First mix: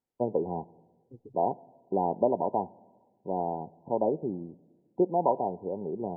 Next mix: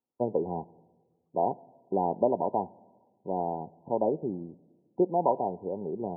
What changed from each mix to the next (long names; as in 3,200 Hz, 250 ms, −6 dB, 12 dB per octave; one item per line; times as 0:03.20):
second voice: add flat-topped band-pass 1,200 Hz, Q 4.4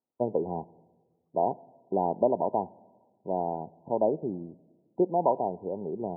master: remove notch filter 640 Hz, Q 16